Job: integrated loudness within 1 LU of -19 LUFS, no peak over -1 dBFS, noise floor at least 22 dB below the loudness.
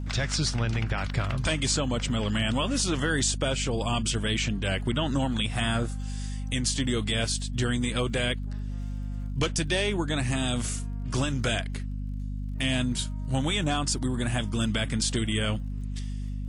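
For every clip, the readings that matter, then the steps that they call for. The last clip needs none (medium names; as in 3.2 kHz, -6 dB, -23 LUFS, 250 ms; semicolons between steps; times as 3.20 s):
tick rate 35 per s; hum 50 Hz; highest harmonic 250 Hz; hum level -30 dBFS; loudness -28.0 LUFS; peak level -14.0 dBFS; loudness target -19.0 LUFS
-> de-click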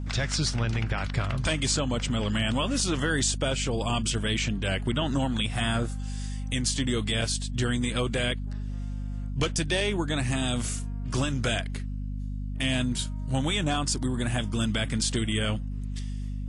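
tick rate 0 per s; hum 50 Hz; highest harmonic 250 Hz; hum level -30 dBFS
-> hum notches 50/100/150/200/250 Hz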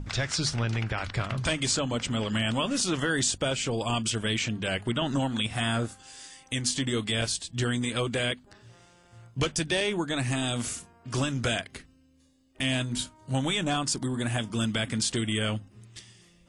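hum not found; loudness -28.5 LUFS; peak level -15.0 dBFS; loudness target -19.0 LUFS
-> trim +9.5 dB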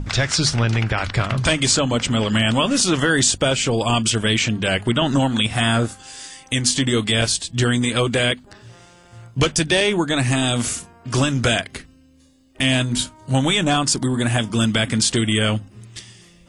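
loudness -19.0 LUFS; peak level -5.5 dBFS; noise floor -50 dBFS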